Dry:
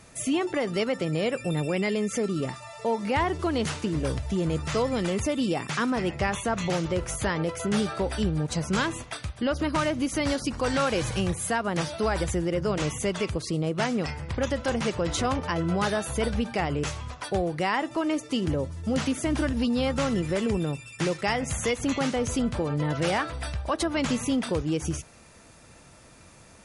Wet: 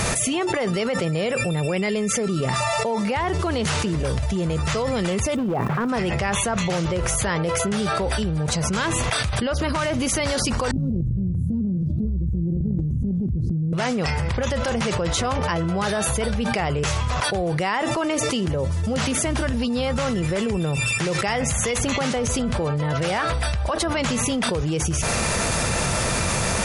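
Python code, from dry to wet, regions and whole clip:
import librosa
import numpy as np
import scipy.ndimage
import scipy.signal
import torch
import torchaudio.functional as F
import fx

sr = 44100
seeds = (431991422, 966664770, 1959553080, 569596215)

y = fx.lowpass(x, sr, hz=1000.0, slope=12, at=(5.34, 5.88), fade=0.02)
y = fx.dmg_crackle(y, sr, seeds[0], per_s=480.0, level_db=-50.0, at=(5.34, 5.88), fade=0.02)
y = fx.overload_stage(y, sr, gain_db=22.5, at=(5.34, 5.88), fade=0.02)
y = fx.chain(y, sr, fx.cheby2_lowpass(hz=670.0, order=4, stop_db=50),
    fx.over_compress(threshold_db=-36.0, ratio=-0.5), at=(10.71, 13.73))
y = fx.peak_eq(y, sr, hz=290.0, db=-9.5, octaves=0.34)
y = fx.env_flatten(y, sr, amount_pct=100)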